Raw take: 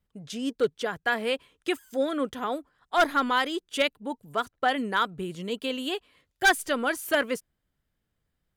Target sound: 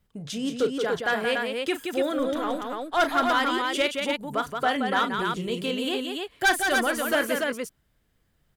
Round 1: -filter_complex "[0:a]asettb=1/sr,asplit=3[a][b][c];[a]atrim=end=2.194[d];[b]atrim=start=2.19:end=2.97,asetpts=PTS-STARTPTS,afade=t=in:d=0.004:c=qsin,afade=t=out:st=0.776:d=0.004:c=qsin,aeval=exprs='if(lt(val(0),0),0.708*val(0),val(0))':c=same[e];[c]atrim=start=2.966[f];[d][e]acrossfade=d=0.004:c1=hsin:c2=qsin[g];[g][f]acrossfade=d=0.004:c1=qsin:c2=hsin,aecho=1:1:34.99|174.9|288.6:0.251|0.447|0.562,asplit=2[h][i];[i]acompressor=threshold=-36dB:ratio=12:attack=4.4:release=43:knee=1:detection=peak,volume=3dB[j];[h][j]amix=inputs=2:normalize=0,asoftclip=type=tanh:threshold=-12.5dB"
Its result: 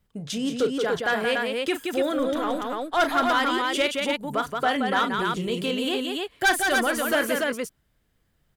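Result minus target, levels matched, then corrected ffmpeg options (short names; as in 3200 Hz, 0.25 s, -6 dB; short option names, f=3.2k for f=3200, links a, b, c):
compressor: peak gain reduction -8 dB
-filter_complex "[0:a]asettb=1/sr,asplit=3[a][b][c];[a]atrim=end=2.194[d];[b]atrim=start=2.19:end=2.97,asetpts=PTS-STARTPTS,afade=t=in:d=0.004:c=qsin,afade=t=out:st=0.776:d=0.004:c=qsin,aeval=exprs='if(lt(val(0),0),0.708*val(0),val(0))':c=same[e];[c]atrim=start=2.966[f];[d][e]acrossfade=d=0.004:c1=hsin:c2=qsin[g];[g][f]acrossfade=d=0.004:c1=qsin:c2=hsin,aecho=1:1:34.99|174.9|288.6:0.251|0.447|0.562,asplit=2[h][i];[i]acompressor=threshold=-44.5dB:ratio=12:attack=4.4:release=43:knee=1:detection=peak,volume=3dB[j];[h][j]amix=inputs=2:normalize=0,asoftclip=type=tanh:threshold=-12.5dB"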